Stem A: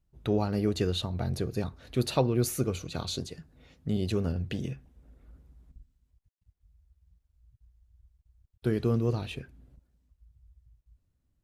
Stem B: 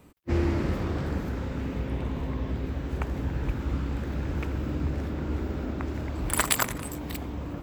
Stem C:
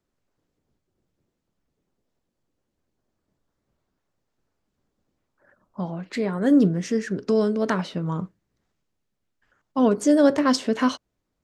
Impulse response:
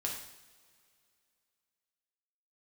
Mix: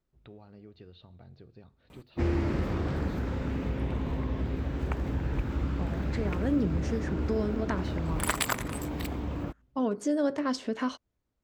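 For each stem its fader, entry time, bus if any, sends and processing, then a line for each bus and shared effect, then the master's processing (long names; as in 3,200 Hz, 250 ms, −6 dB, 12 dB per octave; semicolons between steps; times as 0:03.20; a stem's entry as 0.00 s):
−11.5 dB, 0.00 s, send −18.5 dB, de-essing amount 80%; Butterworth low-pass 4,700 Hz; downward compressor 2 to 1, threshold −46 dBFS, peak gain reduction 14 dB
+2.5 dB, 1.90 s, no send, no processing
−5.5 dB, 0.00 s, no send, no processing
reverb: on, pre-delay 3 ms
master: high-shelf EQ 7,000 Hz −6.5 dB; downward compressor 1.5 to 1, threshold −32 dBFS, peak gain reduction 6 dB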